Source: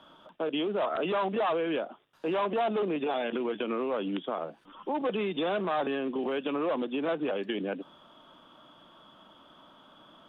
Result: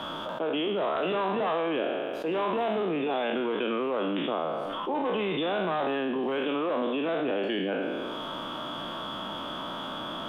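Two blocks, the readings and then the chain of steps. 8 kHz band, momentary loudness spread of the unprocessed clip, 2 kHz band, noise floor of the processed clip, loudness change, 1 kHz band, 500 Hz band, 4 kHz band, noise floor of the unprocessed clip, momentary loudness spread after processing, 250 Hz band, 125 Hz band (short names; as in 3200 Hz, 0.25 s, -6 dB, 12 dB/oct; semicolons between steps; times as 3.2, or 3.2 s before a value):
n/a, 8 LU, +4.0 dB, -36 dBFS, +1.5 dB, +3.0 dB, +2.0 dB, +6.0 dB, -57 dBFS, 7 LU, +2.0 dB, +3.0 dB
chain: spectral trails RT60 0.93 s; fast leveller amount 70%; gain -3.5 dB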